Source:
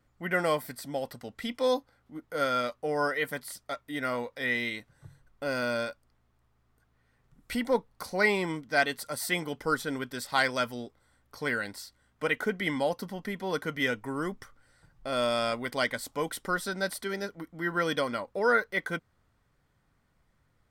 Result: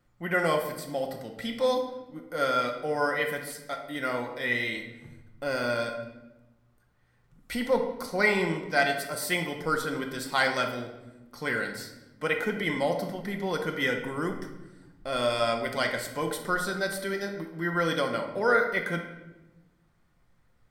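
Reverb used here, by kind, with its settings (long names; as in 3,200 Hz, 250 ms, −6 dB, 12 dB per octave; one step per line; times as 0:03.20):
rectangular room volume 510 cubic metres, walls mixed, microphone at 0.9 metres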